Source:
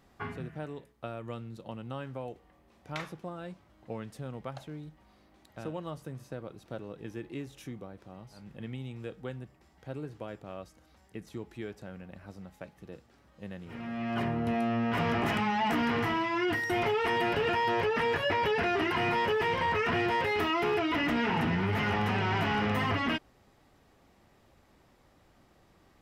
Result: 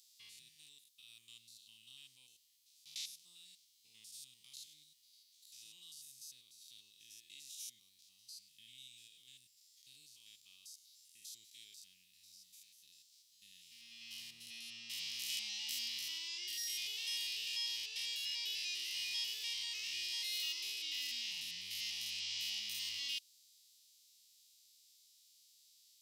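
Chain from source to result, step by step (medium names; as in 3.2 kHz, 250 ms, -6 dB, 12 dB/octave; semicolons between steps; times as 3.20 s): spectrogram pixelated in time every 100 ms; inverse Chebyshev high-pass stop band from 1.6 kHz, stop band 50 dB; trim +12.5 dB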